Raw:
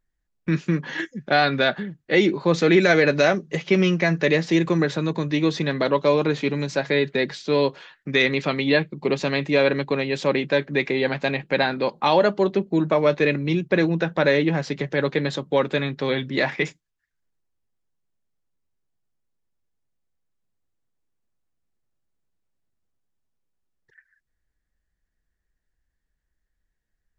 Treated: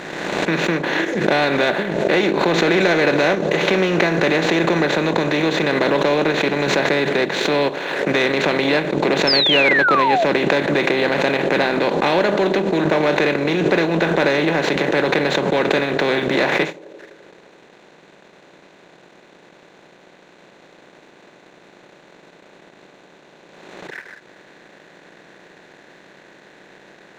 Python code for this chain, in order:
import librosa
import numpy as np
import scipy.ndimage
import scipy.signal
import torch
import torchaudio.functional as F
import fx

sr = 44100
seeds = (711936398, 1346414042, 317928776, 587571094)

p1 = fx.bin_compress(x, sr, power=0.4)
p2 = scipy.signal.sosfilt(scipy.signal.butter(2, 170.0, 'highpass', fs=sr, output='sos'), p1)
p3 = fx.peak_eq(p2, sr, hz=5100.0, db=-8.0, octaves=0.24)
p4 = fx.leveller(p3, sr, passes=1)
p5 = p4 + fx.echo_banded(p4, sr, ms=85, feedback_pct=78, hz=450.0, wet_db=-14.5, dry=0)
p6 = fx.transient(p5, sr, attack_db=0, sustain_db=-8)
p7 = fx.spec_paint(p6, sr, seeds[0], shape='fall', start_s=9.27, length_s=0.98, low_hz=620.0, high_hz=5400.0, level_db=-10.0)
p8 = fx.pre_swell(p7, sr, db_per_s=33.0)
y = p8 * librosa.db_to_amplitude(-7.0)